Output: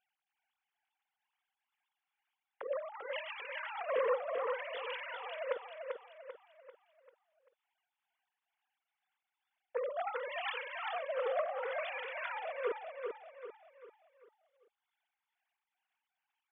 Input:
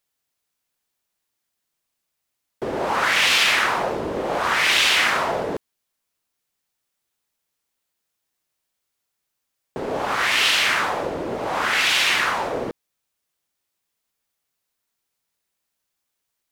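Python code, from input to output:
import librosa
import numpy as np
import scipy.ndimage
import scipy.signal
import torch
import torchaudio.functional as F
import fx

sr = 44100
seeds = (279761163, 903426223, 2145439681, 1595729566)

p1 = fx.sine_speech(x, sr)
p2 = fx.peak_eq(p1, sr, hz=560.0, db=-5.5, octaves=0.77, at=(3.74, 4.15), fade=0.02)
p3 = fx.over_compress(p2, sr, threshold_db=-28.0, ratio=-0.5)
p4 = p3 * (1.0 - 0.4 / 2.0 + 0.4 / 2.0 * np.cos(2.0 * np.pi * 2.2 * (np.arange(len(p3)) / sr)))
p5 = p4 + fx.echo_feedback(p4, sr, ms=392, feedback_pct=42, wet_db=-5.0, dry=0)
y = p5 * 10.0 ** (-8.0 / 20.0)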